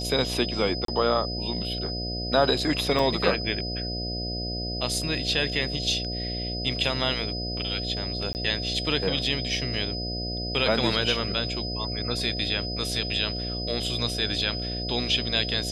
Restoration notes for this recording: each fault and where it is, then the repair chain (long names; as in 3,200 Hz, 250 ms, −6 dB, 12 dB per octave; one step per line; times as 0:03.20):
mains buzz 60 Hz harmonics 12 −33 dBFS
whistle 5,000 Hz −32 dBFS
0:00.85–0:00.88: drop-out 33 ms
0:02.99: drop-out 2.8 ms
0:08.33–0:08.35: drop-out 19 ms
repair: hum removal 60 Hz, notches 12
notch filter 5,000 Hz, Q 30
repair the gap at 0:00.85, 33 ms
repair the gap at 0:02.99, 2.8 ms
repair the gap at 0:08.33, 19 ms